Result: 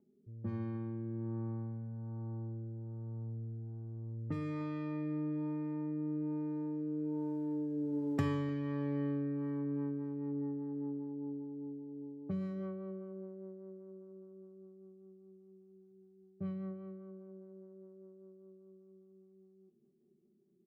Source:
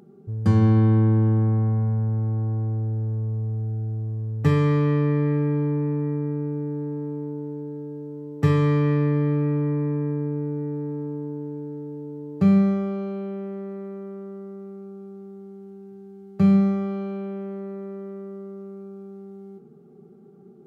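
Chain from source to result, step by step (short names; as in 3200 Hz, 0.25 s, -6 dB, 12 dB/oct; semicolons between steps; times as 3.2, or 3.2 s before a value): Doppler pass-by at 7.82, 11 m/s, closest 4.1 m; low-pass opened by the level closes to 380 Hz, open at -34 dBFS; comb 3.3 ms, depth 49%; compressor 3:1, threshold -45 dBFS, peak gain reduction 18 dB; speakerphone echo 0.3 s, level -13 dB; rotary speaker horn 1.2 Hz, later 5 Hz, at 9.13; mismatched tape noise reduction encoder only; gain +9.5 dB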